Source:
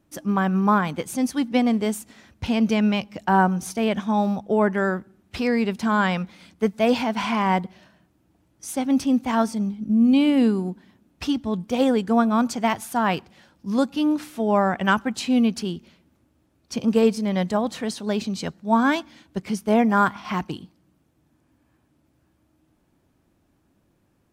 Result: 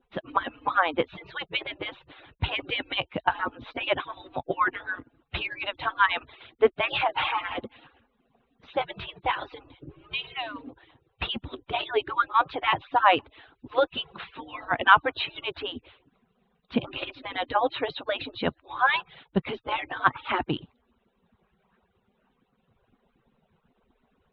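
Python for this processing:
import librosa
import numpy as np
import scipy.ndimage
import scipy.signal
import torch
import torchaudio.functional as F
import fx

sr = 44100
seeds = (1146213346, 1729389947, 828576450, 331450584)

y = fx.hpss_only(x, sr, part='percussive')
y = scipy.signal.sosfilt(scipy.signal.cheby1(6, 3, 3900.0, 'lowpass', fs=sr, output='sos'), y)
y = y * 10.0 ** (6.5 / 20.0)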